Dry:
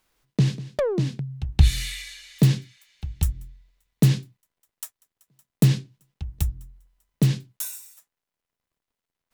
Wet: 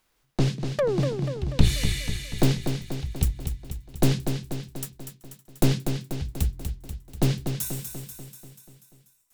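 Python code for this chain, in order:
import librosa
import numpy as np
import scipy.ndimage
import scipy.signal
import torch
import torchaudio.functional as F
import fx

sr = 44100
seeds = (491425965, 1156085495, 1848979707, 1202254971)

y = np.minimum(x, 2.0 * 10.0 ** (-20.0 / 20.0) - x)
y = fx.echo_feedback(y, sr, ms=243, feedback_pct=58, wet_db=-7.0)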